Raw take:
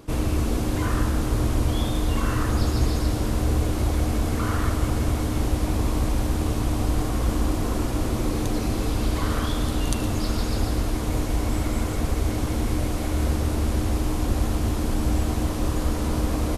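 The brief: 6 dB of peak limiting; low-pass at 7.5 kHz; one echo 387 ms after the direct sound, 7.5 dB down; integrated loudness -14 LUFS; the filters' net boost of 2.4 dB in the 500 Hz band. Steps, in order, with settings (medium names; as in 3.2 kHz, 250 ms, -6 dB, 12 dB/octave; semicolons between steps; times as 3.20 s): low-pass 7.5 kHz; peaking EQ 500 Hz +3 dB; peak limiter -15 dBFS; delay 387 ms -7.5 dB; trim +11.5 dB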